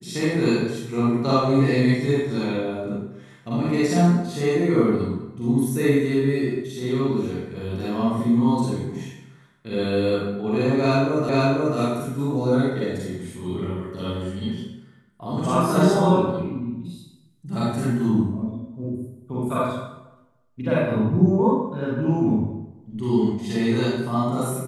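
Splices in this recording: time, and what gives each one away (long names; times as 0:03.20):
0:11.29: the same again, the last 0.49 s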